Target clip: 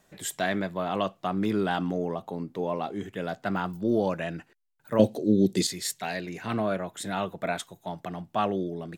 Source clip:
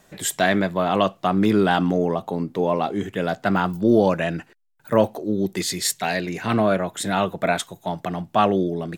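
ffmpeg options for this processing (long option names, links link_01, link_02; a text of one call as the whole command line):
ffmpeg -i in.wav -filter_complex "[0:a]asettb=1/sr,asplit=3[link_01][link_02][link_03];[link_01]atrim=end=4.994[link_04];[link_02]atrim=start=4.99:end=5.67,asetpts=PTS-STARTPTS,afade=type=in:duration=0.004:curve=qsin,afade=type=out:start_time=0.676:duration=0.004:curve=qsin,equalizer=frequency=125:width_type=o:width=1:gain=10,equalizer=frequency=250:width_type=o:width=1:gain=9,equalizer=frequency=500:width_type=o:width=1:gain=8,equalizer=frequency=1000:width_type=o:width=1:gain=-9,equalizer=frequency=4000:width_type=o:width=1:gain=9,equalizer=frequency=8000:width_type=o:width=1:gain=8[link_05];[link_03]atrim=start=5.666[link_06];[link_04][link_05]acrossfade=duration=0.004:curve1=hsin:curve2=qsin[link_07];[link_07][link_06]acrossfade=duration=0.004:curve1=qsin:curve2=hsin,volume=-8.5dB" out.wav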